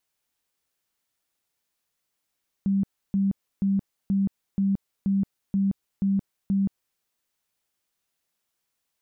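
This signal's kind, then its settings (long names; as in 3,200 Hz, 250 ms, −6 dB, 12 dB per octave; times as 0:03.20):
tone bursts 196 Hz, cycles 34, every 0.48 s, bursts 9, −19.5 dBFS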